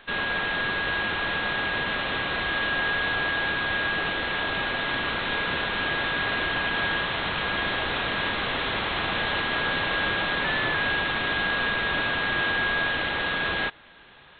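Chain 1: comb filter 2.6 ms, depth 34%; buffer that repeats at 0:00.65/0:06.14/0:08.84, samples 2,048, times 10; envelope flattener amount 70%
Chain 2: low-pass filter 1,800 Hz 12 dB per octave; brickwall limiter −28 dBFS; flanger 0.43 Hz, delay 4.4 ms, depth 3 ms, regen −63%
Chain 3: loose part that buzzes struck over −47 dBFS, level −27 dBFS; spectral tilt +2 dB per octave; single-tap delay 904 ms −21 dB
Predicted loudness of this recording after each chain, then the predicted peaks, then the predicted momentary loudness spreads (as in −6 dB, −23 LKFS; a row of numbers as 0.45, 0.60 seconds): −23.0, −39.5, −23.5 LKFS; −12.5, −30.0, −12.5 dBFS; 1, 1, 2 LU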